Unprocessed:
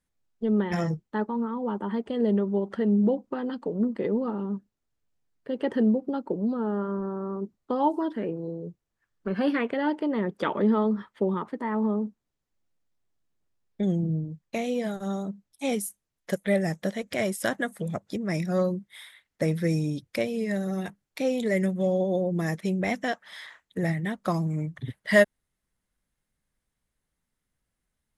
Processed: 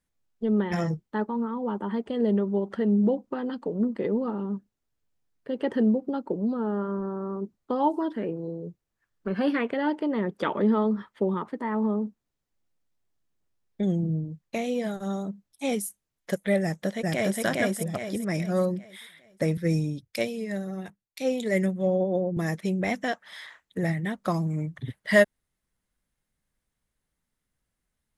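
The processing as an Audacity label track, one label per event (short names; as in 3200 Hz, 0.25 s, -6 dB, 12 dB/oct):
16.620000	17.420000	echo throw 0.41 s, feedback 40%, level 0 dB
19.570000	22.370000	three-band expander depth 100%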